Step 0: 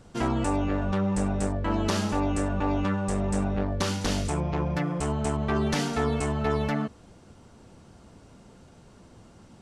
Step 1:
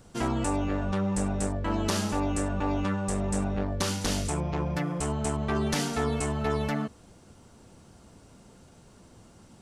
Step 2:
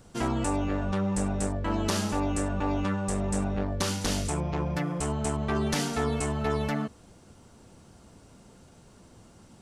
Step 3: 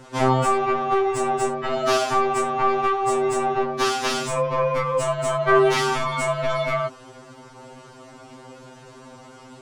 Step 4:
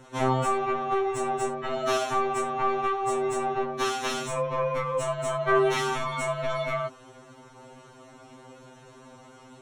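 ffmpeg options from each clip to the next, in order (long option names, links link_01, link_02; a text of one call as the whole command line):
ffmpeg -i in.wav -af "highshelf=frequency=7800:gain=11,volume=-2dB" out.wav
ffmpeg -i in.wav -af anull out.wav
ffmpeg -i in.wav -filter_complex "[0:a]asplit=2[link_01][link_02];[link_02]highpass=frequency=720:poles=1,volume=18dB,asoftclip=type=tanh:threshold=-14dB[link_03];[link_01][link_03]amix=inputs=2:normalize=0,lowpass=frequency=1700:poles=1,volume=-6dB,afftfilt=real='re*2.45*eq(mod(b,6),0)':imag='im*2.45*eq(mod(b,6),0)':win_size=2048:overlap=0.75,volume=7.5dB" out.wav
ffmpeg -i in.wav -af "asuperstop=centerf=4800:order=8:qfactor=6.8,volume=-5.5dB" out.wav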